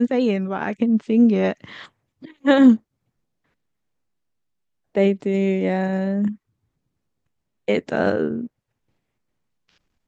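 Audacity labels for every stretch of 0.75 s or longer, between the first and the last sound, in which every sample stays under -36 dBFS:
2.770000	4.950000	silence
6.350000	7.680000	silence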